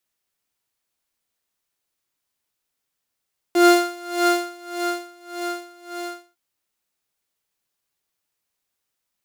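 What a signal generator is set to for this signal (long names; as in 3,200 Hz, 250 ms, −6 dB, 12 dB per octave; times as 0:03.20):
subtractive patch with tremolo F5, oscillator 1 saw, oscillator 2 square, interval +12 semitones, detune 6 cents, oscillator 2 level −7 dB, sub −9.5 dB, noise −29 dB, filter highpass, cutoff 230 Hz, Q 7.9, filter envelope 0.5 octaves, attack 1.4 ms, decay 1.49 s, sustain −13 dB, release 0.44 s, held 2.37 s, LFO 1.7 Hz, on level 22 dB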